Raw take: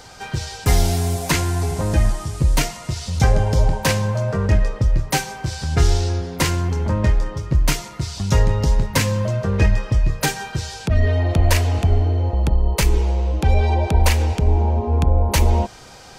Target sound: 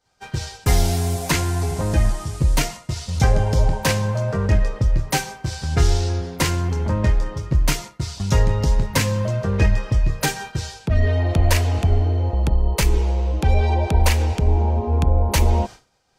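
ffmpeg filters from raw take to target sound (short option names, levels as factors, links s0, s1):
-af "agate=range=0.0224:threshold=0.0447:ratio=3:detection=peak,volume=0.891"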